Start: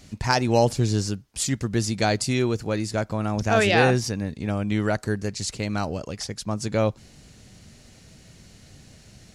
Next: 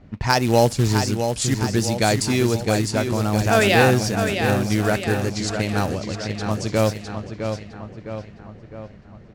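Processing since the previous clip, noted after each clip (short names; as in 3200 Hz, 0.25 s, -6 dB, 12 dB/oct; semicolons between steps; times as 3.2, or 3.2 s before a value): feedback echo 0.659 s, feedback 54%, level -7 dB; short-mantissa float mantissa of 2-bit; low-pass opened by the level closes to 1200 Hz, open at -20 dBFS; gain +3 dB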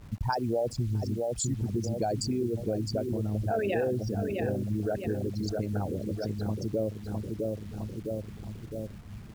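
formant sharpening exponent 3; compressor 3:1, threshold -30 dBFS, peak gain reduction 14 dB; bit-crush 9-bit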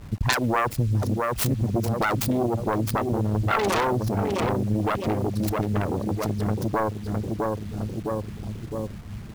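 self-modulated delay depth 0.86 ms; gain +7 dB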